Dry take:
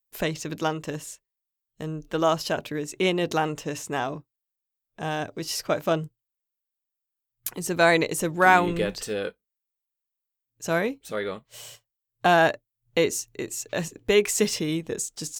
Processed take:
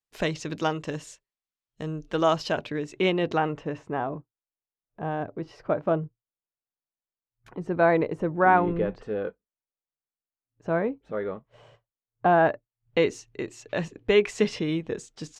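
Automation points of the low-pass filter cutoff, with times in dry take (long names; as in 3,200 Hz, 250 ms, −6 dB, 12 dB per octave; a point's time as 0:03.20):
0:02.17 5,600 Hz
0:03.14 3,100 Hz
0:04.04 1,200 Hz
0:12.33 1,200 Hz
0:13.01 3,100 Hz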